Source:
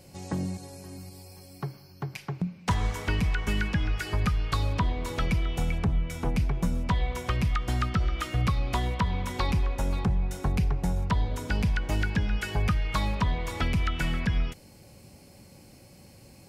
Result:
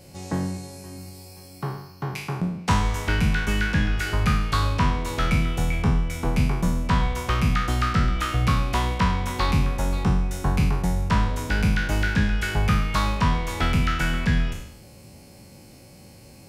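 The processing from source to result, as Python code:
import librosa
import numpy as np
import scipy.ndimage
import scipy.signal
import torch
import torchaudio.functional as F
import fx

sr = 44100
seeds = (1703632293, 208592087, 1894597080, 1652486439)

y = fx.spec_trails(x, sr, decay_s=0.75)
y = F.gain(torch.from_numpy(y), 2.5).numpy()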